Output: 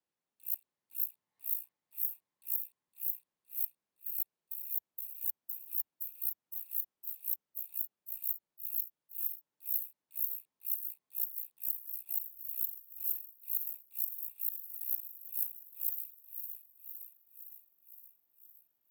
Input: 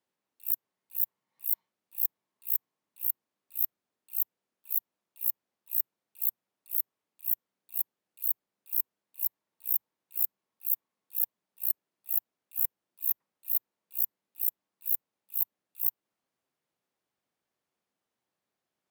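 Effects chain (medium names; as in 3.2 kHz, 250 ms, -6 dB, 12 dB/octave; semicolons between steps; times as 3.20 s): backward echo that repeats 257 ms, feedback 79%, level -7.5 dB; frequency shift -35 Hz; trim -6.5 dB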